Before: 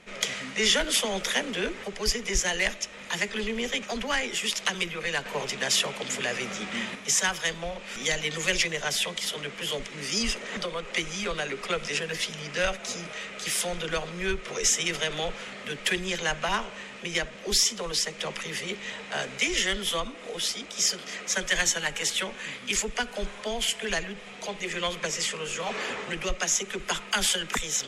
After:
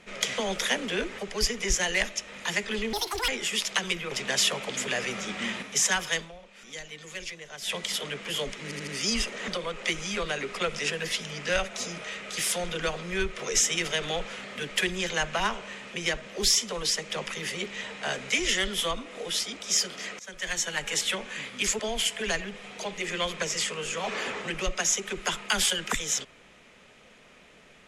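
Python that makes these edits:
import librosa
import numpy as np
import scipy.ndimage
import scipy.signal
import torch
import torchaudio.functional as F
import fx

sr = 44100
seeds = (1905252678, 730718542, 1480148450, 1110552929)

y = fx.edit(x, sr, fx.cut(start_s=0.38, length_s=0.65),
    fx.speed_span(start_s=3.58, length_s=0.61, speed=1.73),
    fx.cut(start_s=5.02, length_s=0.42),
    fx.fade_down_up(start_s=7.5, length_s=1.58, db=-13.0, fade_s=0.14),
    fx.stutter(start_s=9.96, slice_s=0.08, count=4),
    fx.fade_in_from(start_s=21.28, length_s=0.71, floor_db=-22.0),
    fx.cut(start_s=22.88, length_s=0.54), tone=tone)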